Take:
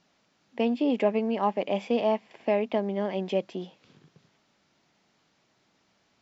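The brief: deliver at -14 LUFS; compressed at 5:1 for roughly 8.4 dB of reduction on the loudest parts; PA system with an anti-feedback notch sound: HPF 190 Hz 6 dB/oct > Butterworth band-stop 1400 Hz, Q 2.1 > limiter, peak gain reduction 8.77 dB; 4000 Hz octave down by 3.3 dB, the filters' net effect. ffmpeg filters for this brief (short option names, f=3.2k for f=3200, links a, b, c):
-af "equalizer=f=4k:t=o:g=-5,acompressor=threshold=-29dB:ratio=5,highpass=f=190:p=1,asuperstop=centerf=1400:order=8:qfactor=2.1,volume=24.5dB,alimiter=limit=-4dB:level=0:latency=1"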